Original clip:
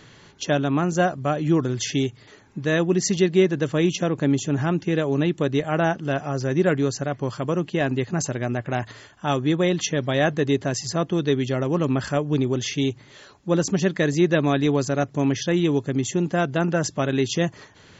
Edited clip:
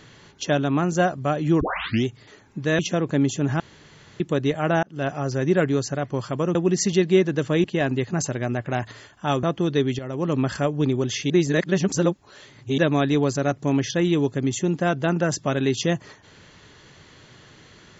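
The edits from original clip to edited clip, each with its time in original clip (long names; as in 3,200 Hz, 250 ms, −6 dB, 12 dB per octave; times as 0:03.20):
0:01.61: tape start 0.44 s
0:02.79–0:03.88: move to 0:07.64
0:04.69–0:05.29: fill with room tone
0:05.92–0:06.17: fade in
0:09.43–0:10.95: remove
0:11.51–0:11.88: fade in, from −12.5 dB
0:12.82–0:14.30: reverse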